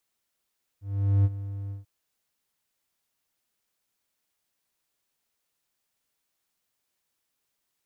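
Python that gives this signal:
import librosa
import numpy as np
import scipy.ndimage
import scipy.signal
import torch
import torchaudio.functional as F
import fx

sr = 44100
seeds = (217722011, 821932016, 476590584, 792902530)

y = fx.adsr_tone(sr, wave='triangle', hz=99.3, attack_ms=438.0, decay_ms=39.0, sustain_db=-15.0, held_s=0.9, release_ms=141.0, level_db=-14.5)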